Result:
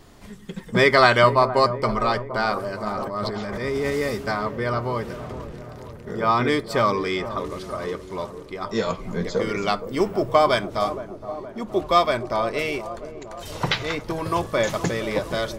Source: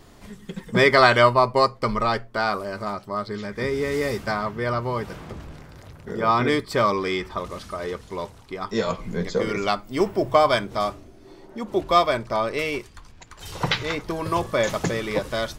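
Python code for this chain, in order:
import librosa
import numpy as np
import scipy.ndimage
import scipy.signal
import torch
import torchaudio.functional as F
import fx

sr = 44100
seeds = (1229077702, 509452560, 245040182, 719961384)

y = fx.echo_wet_lowpass(x, sr, ms=468, feedback_pct=59, hz=930.0, wet_db=-11)
y = fx.transient(y, sr, attack_db=-6, sustain_db=11, at=(2.88, 3.91))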